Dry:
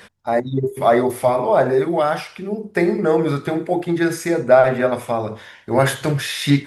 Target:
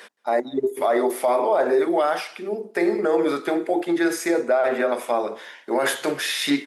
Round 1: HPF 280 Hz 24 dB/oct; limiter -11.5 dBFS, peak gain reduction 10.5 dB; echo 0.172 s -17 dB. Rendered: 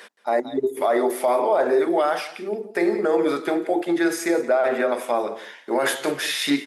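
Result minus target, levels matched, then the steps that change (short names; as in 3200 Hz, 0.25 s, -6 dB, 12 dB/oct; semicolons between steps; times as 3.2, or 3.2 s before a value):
echo-to-direct +11 dB
change: echo 0.172 s -28 dB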